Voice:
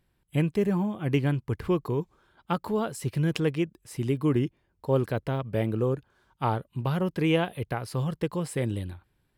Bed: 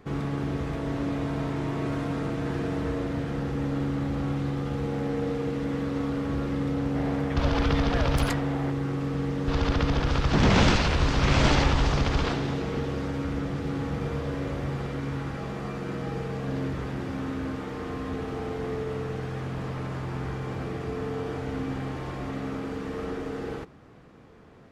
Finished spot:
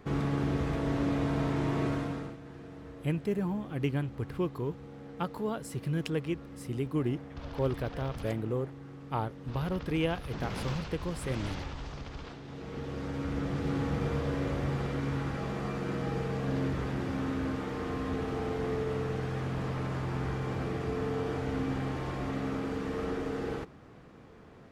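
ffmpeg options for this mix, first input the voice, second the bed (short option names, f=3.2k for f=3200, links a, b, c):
-filter_complex "[0:a]adelay=2700,volume=-6dB[a];[1:a]volume=16dB,afade=t=out:st=1.82:d=0.56:silence=0.141254,afade=t=in:st=12.44:d=1.27:silence=0.149624[b];[a][b]amix=inputs=2:normalize=0"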